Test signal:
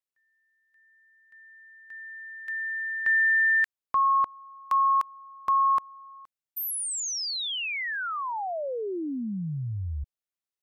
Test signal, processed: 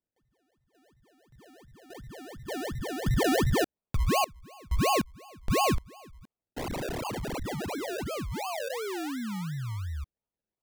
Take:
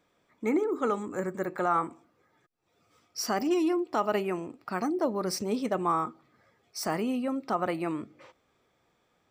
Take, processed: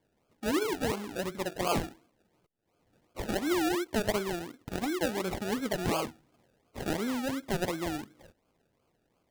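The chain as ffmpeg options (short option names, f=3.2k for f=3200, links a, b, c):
-af "acrusher=samples=33:mix=1:aa=0.000001:lfo=1:lforange=19.8:lforate=2.8,volume=-2.5dB"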